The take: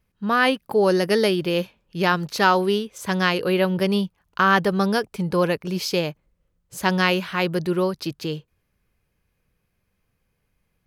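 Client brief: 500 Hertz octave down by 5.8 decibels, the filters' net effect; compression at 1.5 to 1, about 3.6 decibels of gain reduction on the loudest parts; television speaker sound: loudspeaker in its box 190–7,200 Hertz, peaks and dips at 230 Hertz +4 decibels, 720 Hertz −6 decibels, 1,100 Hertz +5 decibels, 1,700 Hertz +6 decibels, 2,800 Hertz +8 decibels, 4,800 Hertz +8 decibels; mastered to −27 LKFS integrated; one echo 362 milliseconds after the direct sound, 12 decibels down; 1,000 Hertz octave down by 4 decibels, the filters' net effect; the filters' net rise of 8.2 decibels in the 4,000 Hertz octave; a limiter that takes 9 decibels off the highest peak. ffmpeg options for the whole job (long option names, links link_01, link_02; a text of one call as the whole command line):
ffmpeg -i in.wav -af "equalizer=frequency=500:width_type=o:gain=-6,equalizer=frequency=1000:width_type=o:gain=-7,equalizer=frequency=4000:width_type=o:gain=3.5,acompressor=threshold=-27dB:ratio=1.5,alimiter=limit=-18.5dB:level=0:latency=1,highpass=frequency=190:width=0.5412,highpass=frequency=190:width=1.3066,equalizer=frequency=230:width_type=q:width=4:gain=4,equalizer=frequency=720:width_type=q:width=4:gain=-6,equalizer=frequency=1100:width_type=q:width=4:gain=5,equalizer=frequency=1700:width_type=q:width=4:gain=6,equalizer=frequency=2800:width_type=q:width=4:gain=8,equalizer=frequency=4800:width_type=q:width=4:gain=8,lowpass=frequency=7200:width=0.5412,lowpass=frequency=7200:width=1.3066,aecho=1:1:362:0.251,volume=-0.5dB" out.wav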